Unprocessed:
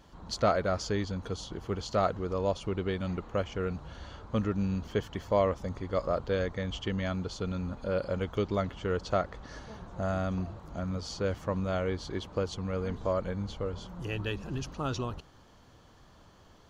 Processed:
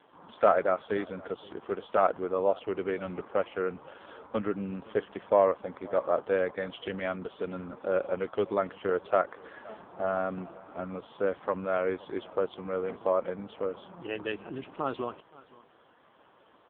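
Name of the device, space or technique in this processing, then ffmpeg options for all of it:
satellite phone: -af "highpass=330,lowpass=3100,aecho=1:1:519:0.0794,volume=5dB" -ar 8000 -c:a libopencore_amrnb -b:a 5150

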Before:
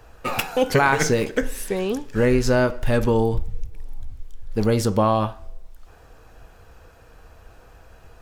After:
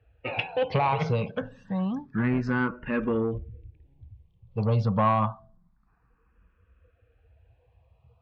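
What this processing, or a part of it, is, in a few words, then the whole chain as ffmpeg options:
barber-pole phaser into a guitar amplifier: -filter_complex "[0:a]afftdn=noise_reduction=16:noise_floor=-38,highshelf=frequency=4800:gain=-6,asplit=2[link_01][link_02];[link_02]afreqshift=0.28[link_03];[link_01][link_03]amix=inputs=2:normalize=1,asoftclip=type=tanh:threshold=-15.5dB,highpass=81,equalizer=frequency=120:width_type=q:width=4:gain=5,equalizer=frequency=180:width_type=q:width=4:gain=7,equalizer=frequency=400:width_type=q:width=4:gain=-5,equalizer=frequency=1100:width_type=q:width=4:gain=6,equalizer=frequency=2600:width_type=q:width=4:gain=4,lowpass=frequency=3800:width=0.5412,lowpass=frequency=3800:width=1.3066,volume=-2dB"

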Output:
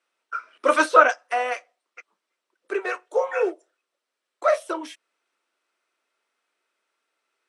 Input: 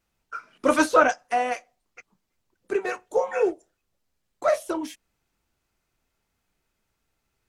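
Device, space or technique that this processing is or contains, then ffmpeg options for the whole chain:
phone speaker on a table: -af "highpass=frequency=380:width=0.5412,highpass=frequency=380:width=1.3066,equalizer=frequency=430:width_type=q:width=4:gain=-3,equalizer=frequency=790:width_type=q:width=4:gain=-6,equalizer=frequency=1300:width_type=q:width=4:gain=3,equalizer=frequency=4700:width_type=q:width=4:gain=-4,equalizer=frequency=6800:width_type=q:width=4:gain=-9,lowpass=frequency=9000:width=0.5412,lowpass=frequency=9000:width=1.3066,volume=3dB"

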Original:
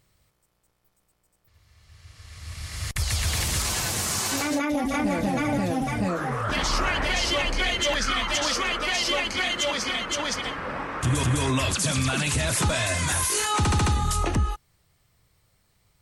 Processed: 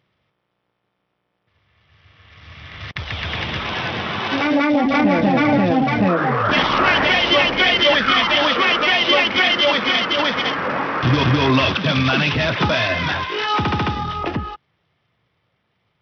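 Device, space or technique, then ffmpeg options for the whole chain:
Bluetooth headset: -af "highpass=140,dynaudnorm=framelen=430:gausssize=17:maxgain=8dB,aresample=8000,aresample=44100,volume=2.5dB" -ar 44100 -c:a sbc -b:a 64k

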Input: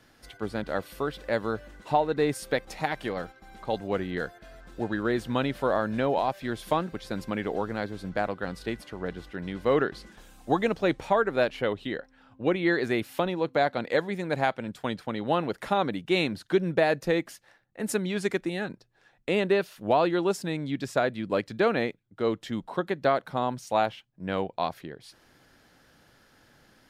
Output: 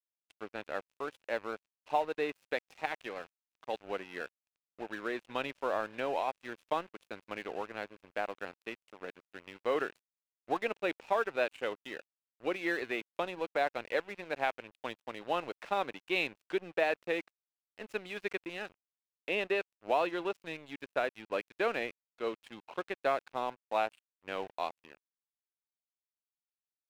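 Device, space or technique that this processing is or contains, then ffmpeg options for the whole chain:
pocket radio on a weak battery: -af "highpass=390,lowpass=3700,aeval=exprs='sgn(val(0))*max(abs(val(0))-0.0075,0)':channel_layout=same,equalizer=frequency=2600:width_type=o:width=0.34:gain=7.5,volume=-5.5dB"

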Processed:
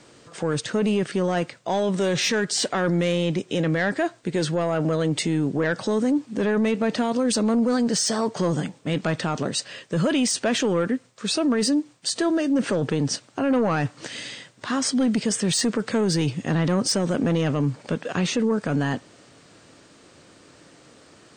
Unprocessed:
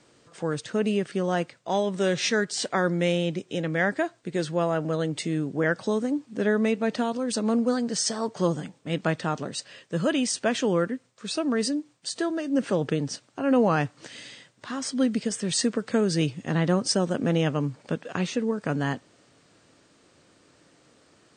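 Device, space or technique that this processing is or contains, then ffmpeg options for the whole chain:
soft clipper into limiter: -af "asoftclip=type=tanh:threshold=-17dB,alimiter=limit=-23.5dB:level=0:latency=1:release=13,volume=8dB"

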